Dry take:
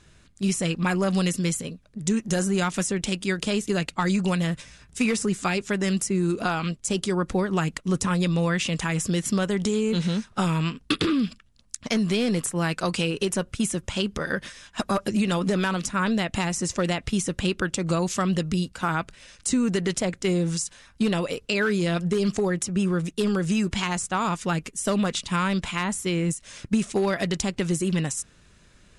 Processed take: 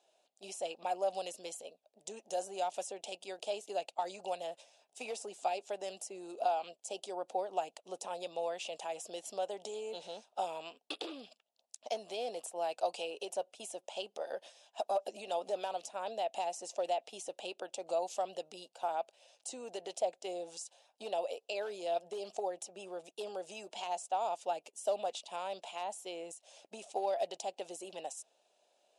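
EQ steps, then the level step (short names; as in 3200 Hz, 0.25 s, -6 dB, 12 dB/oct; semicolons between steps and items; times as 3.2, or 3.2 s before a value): ladder high-pass 600 Hz, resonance 55%; band shelf 1500 Hz -15.5 dB 1.3 oct; high shelf 2000 Hz -9.5 dB; +3.0 dB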